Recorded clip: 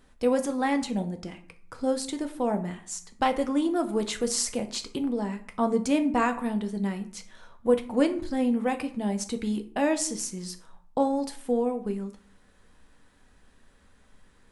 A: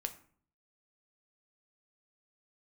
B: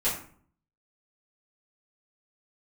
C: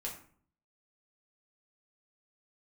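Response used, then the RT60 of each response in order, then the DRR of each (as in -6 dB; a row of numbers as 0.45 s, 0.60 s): A; 0.50 s, 0.50 s, 0.50 s; 6.5 dB, -11.5 dB, -3.5 dB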